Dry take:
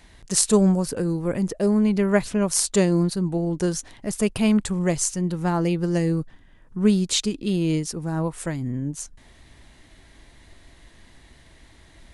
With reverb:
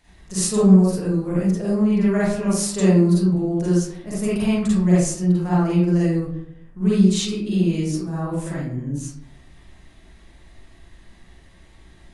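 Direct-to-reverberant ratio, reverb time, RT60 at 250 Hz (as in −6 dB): −9.0 dB, 0.65 s, 0.75 s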